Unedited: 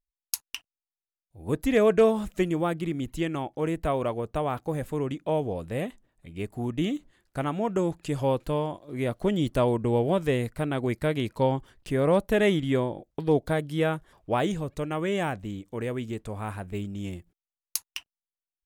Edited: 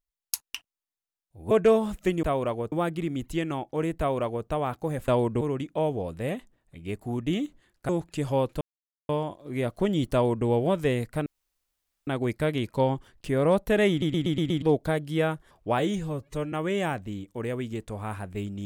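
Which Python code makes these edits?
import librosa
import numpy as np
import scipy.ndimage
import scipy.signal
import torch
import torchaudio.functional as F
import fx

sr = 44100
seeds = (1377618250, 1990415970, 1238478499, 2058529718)

y = fx.edit(x, sr, fx.cut(start_s=1.51, length_s=0.33),
    fx.duplicate(start_s=3.82, length_s=0.49, to_s=2.56),
    fx.cut(start_s=7.4, length_s=0.4),
    fx.insert_silence(at_s=8.52, length_s=0.48),
    fx.duplicate(start_s=9.57, length_s=0.33, to_s=4.92),
    fx.insert_room_tone(at_s=10.69, length_s=0.81),
    fx.stutter_over(start_s=12.52, slice_s=0.12, count=6),
    fx.stretch_span(start_s=14.41, length_s=0.49, factor=1.5), tone=tone)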